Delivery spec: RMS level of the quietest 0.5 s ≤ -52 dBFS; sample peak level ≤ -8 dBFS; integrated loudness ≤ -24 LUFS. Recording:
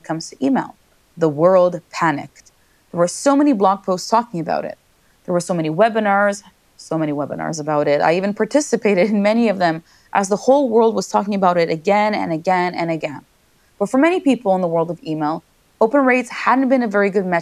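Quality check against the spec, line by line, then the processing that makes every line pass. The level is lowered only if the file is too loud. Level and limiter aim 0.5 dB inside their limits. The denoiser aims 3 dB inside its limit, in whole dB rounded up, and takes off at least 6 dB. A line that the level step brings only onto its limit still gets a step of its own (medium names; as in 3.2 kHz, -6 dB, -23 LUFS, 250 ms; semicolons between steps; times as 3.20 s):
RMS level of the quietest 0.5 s -57 dBFS: pass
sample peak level -2.0 dBFS: fail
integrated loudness -17.5 LUFS: fail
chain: trim -7 dB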